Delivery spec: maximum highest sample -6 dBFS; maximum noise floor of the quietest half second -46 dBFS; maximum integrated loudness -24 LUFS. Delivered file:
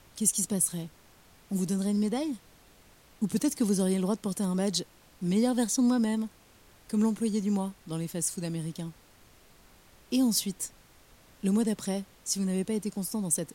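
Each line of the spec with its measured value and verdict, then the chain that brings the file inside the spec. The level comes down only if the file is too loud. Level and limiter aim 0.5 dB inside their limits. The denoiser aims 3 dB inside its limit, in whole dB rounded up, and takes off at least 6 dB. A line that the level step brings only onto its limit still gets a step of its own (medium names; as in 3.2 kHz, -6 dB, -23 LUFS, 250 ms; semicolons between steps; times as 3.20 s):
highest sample -10.0 dBFS: pass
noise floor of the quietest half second -58 dBFS: pass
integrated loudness -29.5 LUFS: pass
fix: none needed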